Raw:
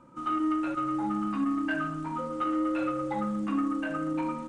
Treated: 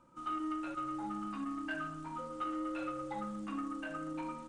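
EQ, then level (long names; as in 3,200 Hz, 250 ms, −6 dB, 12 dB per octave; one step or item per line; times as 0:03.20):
graphic EQ with 10 bands 125 Hz −6 dB, 250 Hz −7 dB, 500 Hz −4 dB, 1,000 Hz −3 dB, 2,000 Hz −4 dB
−3.5 dB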